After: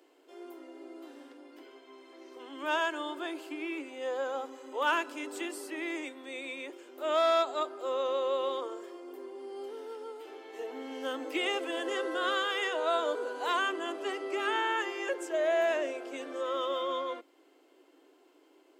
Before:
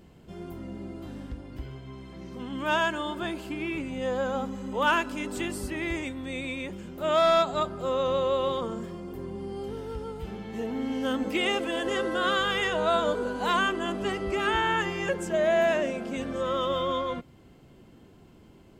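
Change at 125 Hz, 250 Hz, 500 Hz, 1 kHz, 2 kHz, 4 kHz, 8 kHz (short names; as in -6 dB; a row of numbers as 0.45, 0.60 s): under -40 dB, -8.5 dB, -4.5 dB, -4.5 dB, -4.5 dB, -4.5 dB, -4.5 dB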